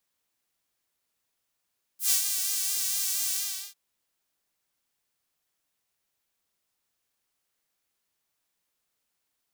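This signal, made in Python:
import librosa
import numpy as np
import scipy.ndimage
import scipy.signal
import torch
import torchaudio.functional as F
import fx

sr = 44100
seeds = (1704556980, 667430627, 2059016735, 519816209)

y = fx.sub_patch_vibrato(sr, seeds[0], note=67, wave='saw', wave2='saw', interval_st=0, detune_cents=16, level2_db=-9.0, sub_db=-15.0, noise_db=-12.5, kind='highpass', cutoff_hz=4500.0, q=1.0, env_oct=1.5, env_decay_s=0.09, env_sustain_pct=35, attack_ms=117.0, decay_s=0.11, sustain_db=-7.0, release_s=0.42, note_s=1.33, lfo_hz=4.3, vibrato_cents=51)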